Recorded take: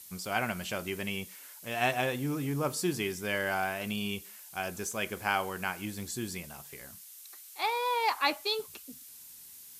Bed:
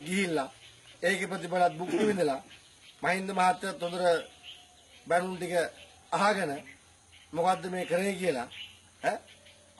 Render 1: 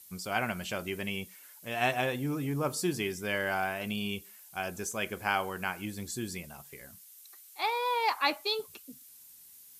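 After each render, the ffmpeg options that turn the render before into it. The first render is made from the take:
-af "afftdn=nr=6:nf=-51"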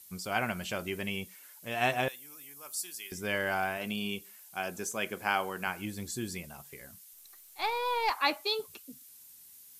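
-filter_complex "[0:a]asettb=1/sr,asplit=3[s0][s1][s2];[s0]atrim=end=2.084[s3];[s1]atrim=start=2.08:end=3.12,asetpts=PTS-STARTPTS,afade=t=in:d=0.004:c=qsin,afade=t=out:st=1.036:d=0.004:c=qsin,aderivative[s4];[s2]atrim=start=3.116[s5];[s3][s4]acrossfade=d=0.004:c1=hsin:c2=qsin[s6];[s6][s5]acrossfade=d=0.004:c1=qsin:c2=hsin,asettb=1/sr,asplit=3[s7][s8][s9];[s7]atrim=end=3.774[s10];[s8]atrim=start=3.77:end=5.67,asetpts=PTS-STARTPTS,afade=t=in:d=0.004:c=qsin,afade=t=out:st=1.896:d=0.004:c=qsin,highpass=140[s11];[s9]atrim=start=5.666[s12];[s10][s11]acrossfade=d=0.004:c1=hsin:c2=qsin[s13];[s13][s12]acrossfade=d=0.004:c1=qsin:c2=hsin,asettb=1/sr,asplit=3[s14][s15][s16];[s14]atrim=end=7.134[s17];[s15]atrim=start=7.13:end=8.1,asetpts=PTS-STARTPTS,afade=t=in:d=0.004:c=qsin,afade=t=out:st=0.966:d=0.004:c=qsin,aeval=exprs='if(lt(val(0),0),0.708*val(0),val(0))':c=same[s18];[s16]atrim=start=8.096[s19];[s17][s18]acrossfade=d=0.004:c1=hsin:c2=qsin[s20];[s20][s19]acrossfade=d=0.004:c1=qsin:c2=hsin"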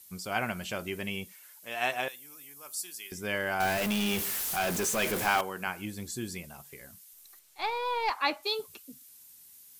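-filter_complex "[0:a]asettb=1/sr,asplit=3[s0][s1][s2];[s0]atrim=end=1.324[s3];[s1]atrim=start=1.32:end=2.09,asetpts=PTS-STARTPTS,afade=t=in:d=0.004:c=qsin,afade=t=out:st=0.766:d=0.004:c=qsin,highpass=f=580:p=1[s4];[s2]atrim=start=2.086[s5];[s3][s4]acrossfade=d=0.004:c1=hsin:c2=qsin[s6];[s6][s5]acrossfade=d=0.004:c1=qsin:c2=hsin,asettb=1/sr,asplit=3[s7][s8][s9];[s7]atrim=end=3.604[s10];[s8]atrim=start=3.6:end=5.41,asetpts=PTS-STARTPTS,afade=t=in:d=0.004:c=qsin,afade=t=out:st=1.806:d=0.004:c=qsin,aeval=exprs='val(0)+0.5*0.0422*sgn(val(0))':c=same[s11];[s9]atrim=start=5.406[s12];[s10][s11]acrossfade=d=0.004:c1=hsin:c2=qsin[s13];[s13][s12]acrossfade=d=0.004:c1=qsin:c2=hsin,asettb=1/sr,asplit=3[s14][s15][s16];[s14]atrim=end=7.394[s17];[s15]atrim=start=7.39:end=8.43,asetpts=PTS-STARTPTS,afade=t=in:d=0.004:c=qsin,afade=t=out:st=1.036:d=0.004:c=qsin,highshelf=f=9700:g=-12[s18];[s16]atrim=start=8.426[s19];[s17][s18]acrossfade=d=0.004:c1=hsin:c2=qsin[s20];[s20][s19]acrossfade=d=0.004:c1=qsin:c2=hsin"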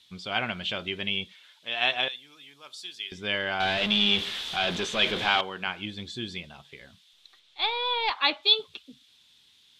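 -af "lowpass=f=3500:t=q:w=6.4"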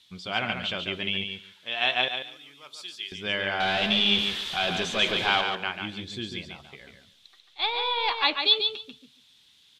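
-af "aecho=1:1:142|284|426:0.501|0.0852|0.0145"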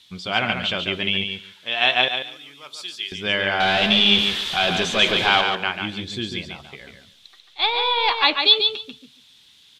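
-af "volume=2.11,alimiter=limit=0.708:level=0:latency=1"

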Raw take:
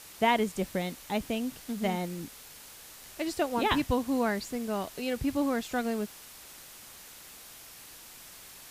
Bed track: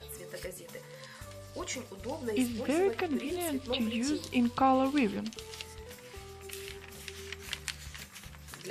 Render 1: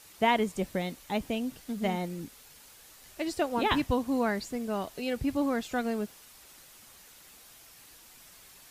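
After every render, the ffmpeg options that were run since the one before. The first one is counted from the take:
-af "afftdn=nr=6:nf=-50"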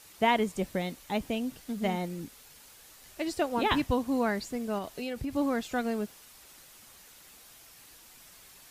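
-filter_complex "[0:a]asettb=1/sr,asplit=3[s0][s1][s2];[s0]atrim=end=4.784[s3];[s1]atrim=start=4.78:end=5.36,asetpts=PTS-STARTPTS,afade=t=in:d=0.004:c=qsin,afade=t=out:st=0.576:d=0.004:c=qsin,acompressor=threshold=0.0316:ratio=6:attack=3.2:release=140:knee=1:detection=peak[s4];[s2]atrim=start=5.356[s5];[s3][s4]acrossfade=d=0.004:c1=hsin:c2=qsin[s6];[s6][s5]acrossfade=d=0.004:c1=qsin:c2=hsin"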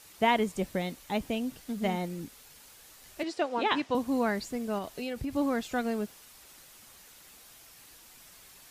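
-filter_complex "[0:a]asettb=1/sr,asplit=3[s0][s1][s2];[s0]atrim=end=3.234[s3];[s1]atrim=start=3.23:end=3.95,asetpts=PTS-STARTPTS,afade=t=in:d=0.004:c=qsin,afade=t=out:st=0.716:d=0.004:c=qsin,highpass=300,lowpass=5600[s4];[s2]atrim=start=3.946[s5];[s3][s4]acrossfade=d=0.004:c1=hsin:c2=qsin[s6];[s6][s5]acrossfade=d=0.004:c1=qsin:c2=hsin"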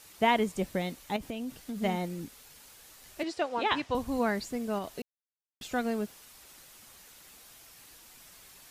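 -filter_complex "[0:a]asettb=1/sr,asplit=3[s0][s1][s2];[s0]atrim=end=1.164[s3];[s1]atrim=start=1.16:end=1.8,asetpts=PTS-STARTPTS,afade=t=in:d=0.004:c=qsin,afade=t=out:st=0.636:d=0.004:c=qsin,acompressor=threshold=0.0251:ratio=6:attack=3.2:release=140:knee=1:detection=peak[s4];[s2]atrim=start=1.796[s5];[s3][s4]acrossfade=d=0.004:c1=hsin:c2=qsin[s6];[s6][s5]acrossfade=d=0.004:c1=qsin:c2=hsin,asplit=3[s7][s8][s9];[s7]afade=t=out:st=3.31:d=0.02[s10];[s8]asubboost=boost=8.5:cutoff=82,afade=t=in:st=3.31:d=0.02,afade=t=out:st=4.18:d=0.02[s11];[s9]afade=t=in:st=4.18:d=0.02[s12];[s10][s11][s12]amix=inputs=3:normalize=0,asplit=3[s13][s14][s15];[s13]atrim=end=5.02,asetpts=PTS-STARTPTS,afade=t=out:st=5.016:d=0.004:c=hsin[s16];[s14]atrim=start=5.02:end=5.61,asetpts=PTS-STARTPTS,volume=0[s17];[s15]atrim=start=5.61,asetpts=PTS-STARTPTS,afade=t=in:d=0.004:c=hsin[s18];[s16][s17][s18]concat=n=3:v=0:a=1"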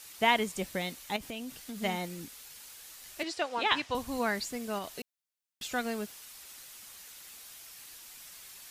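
-af "tiltshelf=f=1100:g=-5"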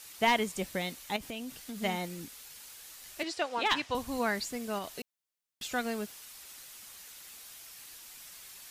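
-af "aeval=exprs='clip(val(0),-1,0.112)':c=same"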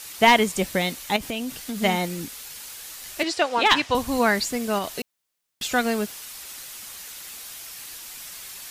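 -af "volume=3.35"

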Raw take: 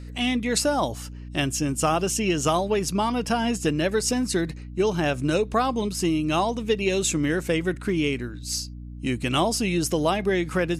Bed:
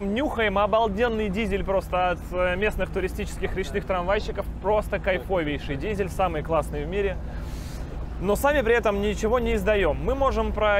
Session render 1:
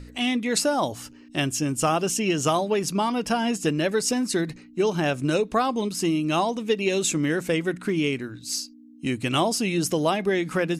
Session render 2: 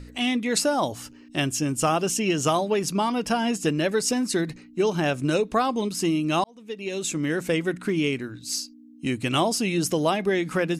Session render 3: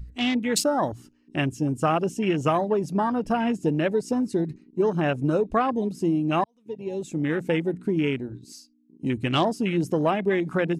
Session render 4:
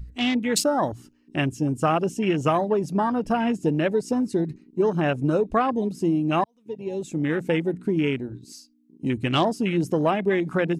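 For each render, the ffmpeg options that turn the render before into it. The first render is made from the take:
-af "bandreject=f=60:t=h:w=4,bandreject=f=120:t=h:w=4,bandreject=f=180:t=h:w=4"
-filter_complex "[0:a]asplit=2[s0][s1];[s0]atrim=end=6.44,asetpts=PTS-STARTPTS,afade=t=out:st=6.436:d=0.004:c=hsin[s2];[s1]atrim=start=6.44,asetpts=PTS-STARTPTS,afade=t=in:d=1.03[s3];[s2][s3]concat=n=2:v=0:a=1"
-af "afwtdn=0.0316,lowshelf=f=71:g=8.5"
-af "volume=1.12"

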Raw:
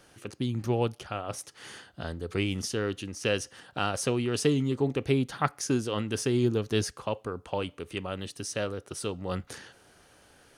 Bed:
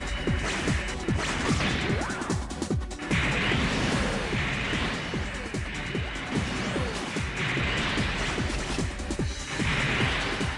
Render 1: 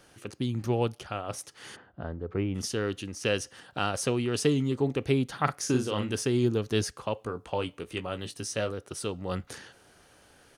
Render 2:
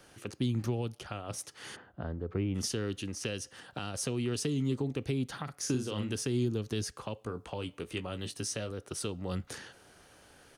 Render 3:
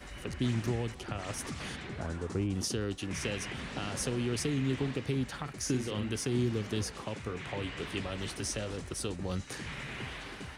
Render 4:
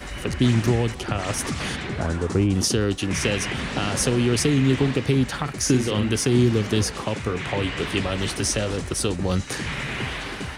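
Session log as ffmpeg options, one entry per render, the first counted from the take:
-filter_complex "[0:a]asplit=3[s0][s1][s2];[s0]afade=t=out:st=1.75:d=0.02[s3];[s1]lowpass=1300,afade=t=in:st=1.75:d=0.02,afade=t=out:st=2.54:d=0.02[s4];[s2]afade=t=in:st=2.54:d=0.02[s5];[s3][s4][s5]amix=inputs=3:normalize=0,asplit=3[s6][s7][s8];[s6]afade=t=out:st=5.47:d=0.02[s9];[s7]asplit=2[s10][s11];[s11]adelay=39,volume=0.501[s12];[s10][s12]amix=inputs=2:normalize=0,afade=t=in:st=5.47:d=0.02,afade=t=out:st=6.14:d=0.02[s13];[s8]afade=t=in:st=6.14:d=0.02[s14];[s9][s13][s14]amix=inputs=3:normalize=0,asettb=1/sr,asplit=3[s15][s16][s17];[s15]atrim=end=7.174[s18];[s16]atrim=start=7.17:end=8.71,asetpts=PTS-STARTPTS,afade=t=in:d=0.004:c=qsin,afade=t=out:st=1.536:d=0.004:c=qsin,asplit=2[s19][s20];[s20]adelay=18,volume=0.355[s21];[s19][s21]amix=inputs=2:normalize=0,atrim=end_sample=67914[s22];[s17]atrim=start=8.706[s23];[s18][s22]acrossfade=d=0.004:c1=hsin:c2=qsin[s24];[s24][s23]acrossfade=d=0.004:c1=qsin:c2=hsin"
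-filter_complex "[0:a]alimiter=limit=0.112:level=0:latency=1:release=298,acrossover=split=330|3000[s0][s1][s2];[s1]acompressor=threshold=0.0112:ratio=6[s3];[s0][s3][s2]amix=inputs=3:normalize=0"
-filter_complex "[1:a]volume=0.178[s0];[0:a][s0]amix=inputs=2:normalize=0"
-af "volume=3.98"

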